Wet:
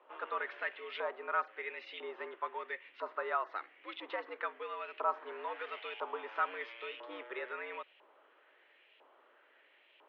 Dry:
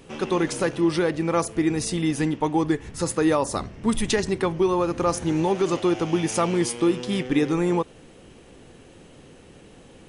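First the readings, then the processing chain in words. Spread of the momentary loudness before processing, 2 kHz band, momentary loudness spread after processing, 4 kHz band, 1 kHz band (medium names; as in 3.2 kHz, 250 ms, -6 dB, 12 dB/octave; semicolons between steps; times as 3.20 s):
4 LU, -7.0 dB, 9 LU, -16.0 dB, -9.0 dB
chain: LFO band-pass saw up 1 Hz 890–2600 Hz; mistuned SSB +99 Hz 190–3600 Hz; trim -3.5 dB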